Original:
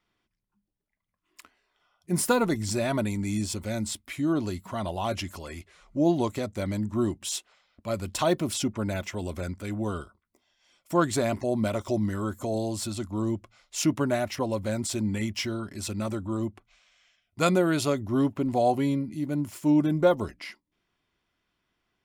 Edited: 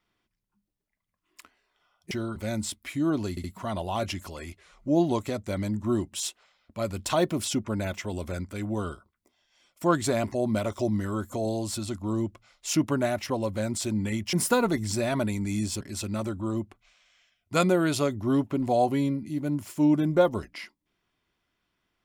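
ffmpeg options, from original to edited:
-filter_complex "[0:a]asplit=7[a][b][c][d][e][f][g];[a]atrim=end=2.112[h];[b]atrim=start=15.418:end=15.672[i];[c]atrim=start=3.588:end=4.602[j];[d]atrim=start=4.528:end=4.602[k];[e]atrim=start=4.528:end=15.422[l];[f]atrim=start=2.108:end=3.592[m];[g]atrim=start=15.668[n];[h][i]acrossfade=d=0.004:c1=hsin:c2=hsin[o];[o][j]acrossfade=d=0.004:c1=hsin:c2=hsin[p];[p][k]acrossfade=d=0.004:c1=hsin:c2=hsin[q];[q][l]acrossfade=d=0.004:c1=hsin:c2=hsin[r];[r][m]acrossfade=d=0.004:c1=hsin:c2=hsin[s];[s][n]acrossfade=d=0.004:c1=hsin:c2=hsin"

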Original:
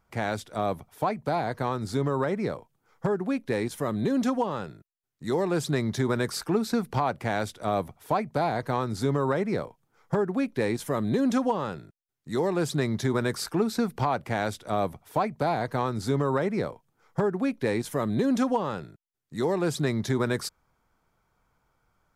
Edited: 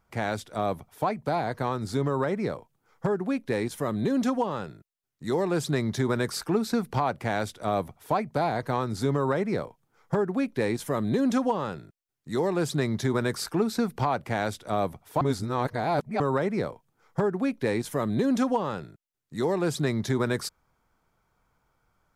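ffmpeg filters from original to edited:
-filter_complex "[0:a]asplit=3[a][b][c];[a]atrim=end=15.212[d];[b]atrim=start=15.208:end=16.202,asetpts=PTS-STARTPTS,areverse[e];[c]atrim=start=16.198[f];[d][e]acrossfade=d=0.004:c1=hsin:c2=hsin[g];[g][f]acrossfade=d=0.004:c1=hsin:c2=hsin"

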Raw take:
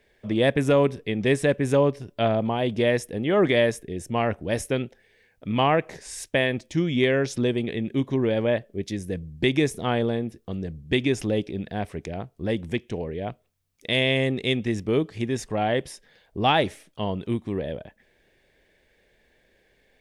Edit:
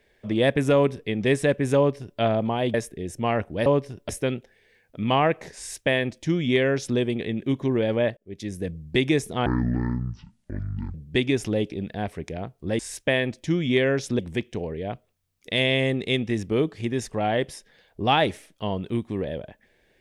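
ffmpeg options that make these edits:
-filter_complex "[0:a]asplit=9[a][b][c][d][e][f][g][h][i];[a]atrim=end=2.742[j];[b]atrim=start=3.648:end=4.572[k];[c]atrim=start=1.768:end=2.202[l];[d]atrim=start=4.568:end=8.65,asetpts=PTS-STARTPTS,afade=t=out:st=4.078:d=0.004:c=hsin[m];[e]atrim=start=8.65:end=9.944,asetpts=PTS-STARTPTS,afade=t=in:d=0.38[n];[f]atrim=start=9.94:end=10.71,asetpts=PTS-STARTPTS,asetrate=22932,aresample=44100[o];[g]atrim=start=10.706:end=12.562[p];[h]atrim=start=6.058:end=7.462[q];[i]atrim=start=12.558[r];[j][k]acrossfade=d=0.004:c1=hsin:c2=hsin[s];[s][l]acrossfade=d=0.004:c1=hsin:c2=hsin[t];[m][n]concat=n=2:v=0:a=1[u];[t][u]acrossfade=d=0.004:c1=hsin:c2=hsin[v];[v][o]acrossfade=d=0.004:c1=hsin:c2=hsin[w];[w][p]acrossfade=d=0.004:c1=hsin:c2=hsin[x];[x][q]acrossfade=d=0.004:c1=hsin:c2=hsin[y];[y][r]acrossfade=d=0.004:c1=hsin:c2=hsin"

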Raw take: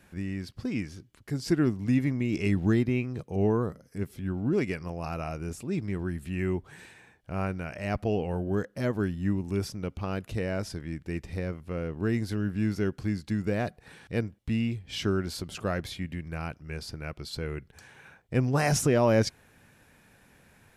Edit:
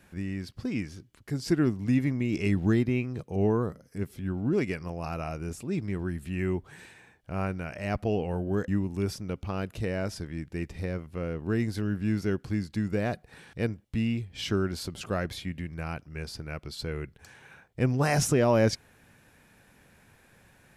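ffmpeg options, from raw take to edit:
-filter_complex "[0:a]asplit=2[a][b];[a]atrim=end=8.682[c];[b]atrim=start=9.218[d];[c][d]acrossfade=d=0.004:c1=hsin:c2=hsin"

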